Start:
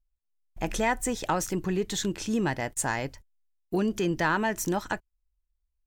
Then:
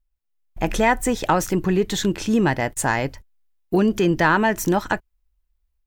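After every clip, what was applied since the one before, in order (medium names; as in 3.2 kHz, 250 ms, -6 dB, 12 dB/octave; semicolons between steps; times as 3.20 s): peaking EQ 7.3 kHz -5.5 dB 1.6 oct; level rider gain up to 5 dB; trim +3.5 dB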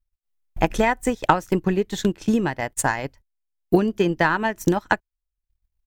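transient shaper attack +10 dB, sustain -11 dB; trim -5 dB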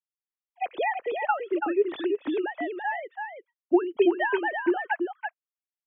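formants replaced by sine waves; on a send: delay 333 ms -5.5 dB; on the sum: trim -6 dB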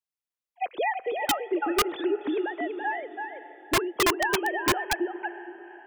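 echo that smears into a reverb 486 ms, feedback 41%, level -14.5 dB; integer overflow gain 16.5 dB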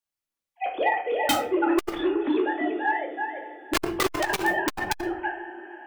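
simulated room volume 340 m³, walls furnished, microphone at 2.4 m; transformer saturation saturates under 840 Hz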